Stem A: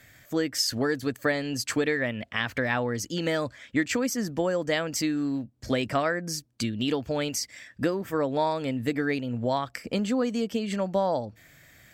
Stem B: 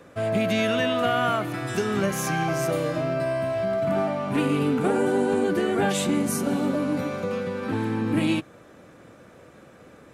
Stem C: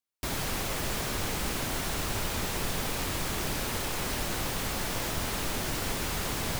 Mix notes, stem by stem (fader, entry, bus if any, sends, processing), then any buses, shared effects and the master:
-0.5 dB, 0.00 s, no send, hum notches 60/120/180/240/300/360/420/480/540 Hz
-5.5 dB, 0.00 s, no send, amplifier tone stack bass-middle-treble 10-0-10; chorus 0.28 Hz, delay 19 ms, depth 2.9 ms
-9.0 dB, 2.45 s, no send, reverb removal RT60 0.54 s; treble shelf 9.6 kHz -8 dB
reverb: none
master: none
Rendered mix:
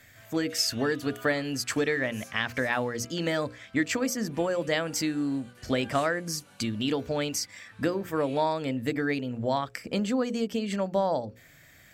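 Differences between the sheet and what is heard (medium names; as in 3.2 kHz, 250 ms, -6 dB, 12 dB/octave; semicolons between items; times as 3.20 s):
stem B -5.5 dB -> -12.0 dB; stem C: muted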